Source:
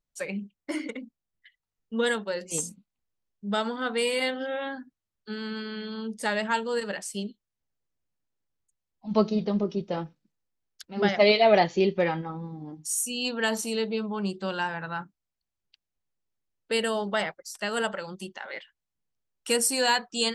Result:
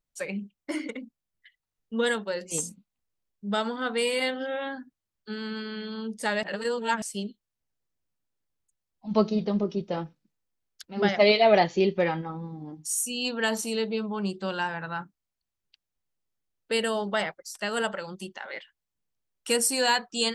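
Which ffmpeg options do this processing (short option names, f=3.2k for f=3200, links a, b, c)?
-filter_complex "[0:a]asplit=3[a][b][c];[a]atrim=end=6.432[d];[b]atrim=start=6.428:end=7.022,asetpts=PTS-STARTPTS,areverse[e];[c]atrim=start=7.018[f];[d][e]acrossfade=d=0.004:c1=hsin:c2=hsin[g];[g][f]acrossfade=d=0.004:c1=hsin:c2=hsin"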